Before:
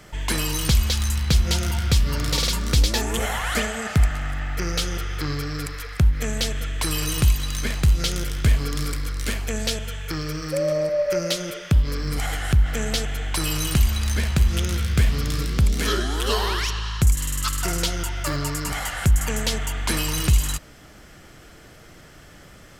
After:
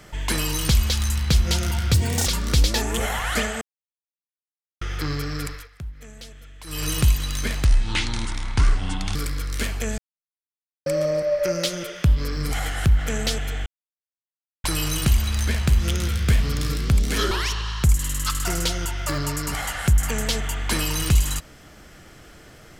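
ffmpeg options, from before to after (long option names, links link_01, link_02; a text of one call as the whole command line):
ffmpeg -i in.wav -filter_complex "[0:a]asplit=13[link_01][link_02][link_03][link_04][link_05][link_06][link_07][link_08][link_09][link_10][link_11][link_12][link_13];[link_01]atrim=end=1.944[link_14];[link_02]atrim=start=1.94:end=2.46,asetpts=PTS-STARTPTS,asetrate=71001,aresample=44100,atrim=end_sample=14243,asetpts=PTS-STARTPTS[link_15];[link_03]atrim=start=2.456:end=3.81,asetpts=PTS-STARTPTS,afade=type=out:start_time=1.35:duration=0.004:curve=hsin[link_16];[link_04]atrim=start=3.81:end=5.01,asetpts=PTS-STARTPTS,volume=0[link_17];[link_05]atrim=start=5.01:end=5.89,asetpts=PTS-STARTPTS,afade=type=in:duration=0.004:curve=hsin,afade=type=out:start_time=0.66:duration=0.22:silence=0.141254[link_18];[link_06]atrim=start=5.89:end=6.85,asetpts=PTS-STARTPTS,volume=-17dB[link_19];[link_07]atrim=start=6.85:end=7.844,asetpts=PTS-STARTPTS,afade=type=in:duration=0.22:silence=0.141254[link_20];[link_08]atrim=start=7.84:end=8.82,asetpts=PTS-STARTPTS,asetrate=28665,aresample=44100,atrim=end_sample=66489,asetpts=PTS-STARTPTS[link_21];[link_09]atrim=start=8.816:end=9.65,asetpts=PTS-STARTPTS,afade=type=out:start_time=0.83:duration=0.004:curve=hsin[link_22];[link_10]atrim=start=9.65:end=10.53,asetpts=PTS-STARTPTS,volume=0[link_23];[link_11]atrim=start=10.53:end=13.33,asetpts=PTS-STARTPTS,afade=type=in:duration=0.004:curve=hsin,afade=type=out:start_time=2.796:duration=0.004:curve=hsin,apad=pad_dur=0.98[link_24];[link_12]atrim=start=13.33:end=16.002,asetpts=PTS-STARTPTS,afade=type=in:duration=0.004:curve=hsin[link_25];[link_13]atrim=start=16.488[link_26];[link_14][link_15]acrossfade=duration=0.004:curve1=hsin:curve2=hsin[link_27];[link_16][link_17][link_18][link_19][link_20]concat=n=5:v=0:a=1[link_28];[link_27][link_28]acrossfade=duration=0.004:curve1=hsin:curve2=hsin[link_29];[link_29][link_21]acrossfade=duration=0.004:curve1=hsin:curve2=hsin[link_30];[link_22][link_23][link_24][link_25]concat=n=4:v=0:a=1[link_31];[link_30][link_31]acrossfade=duration=0.004:curve1=hsin:curve2=hsin[link_32];[link_32][link_26]acrossfade=duration=0.004:curve1=hsin:curve2=hsin" out.wav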